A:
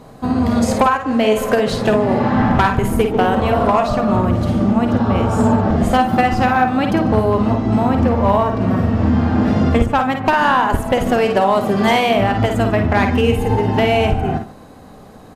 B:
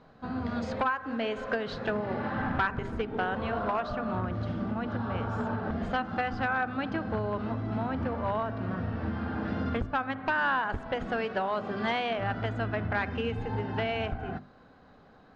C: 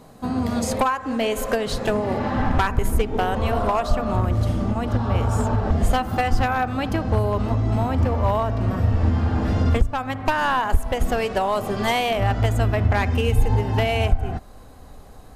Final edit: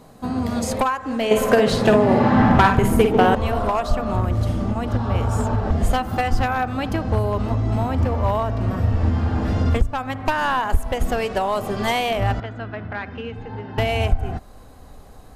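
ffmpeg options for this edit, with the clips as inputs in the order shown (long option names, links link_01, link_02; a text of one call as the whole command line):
ffmpeg -i take0.wav -i take1.wav -i take2.wav -filter_complex "[2:a]asplit=3[link_01][link_02][link_03];[link_01]atrim=end=1.312[link_04];[0:a]atrim=start=1.308:end=3.352[link_05];[link_02]atrim=start=3.348:end=12.402[link_06];[1:a]atrim=start=12.398:end=13.782[link_07];[link_03]atrim=start=13.778[link_08];[link_04][link_05]acrossfade=duration=0.004:curve1=hsin:curve2=hsin[link_09];[link_09][link_06]acrossfade=duration=0.004:curve1=hsin:curve2=hsin[link_10];[link_10][link_07]acrossfade=duration=0.004:curve1=hsin:curve2=hsin[link_11];[link_11][link_08]acrossfade=duration=0.004:curve1=hsin:curve2=hsin" out.wav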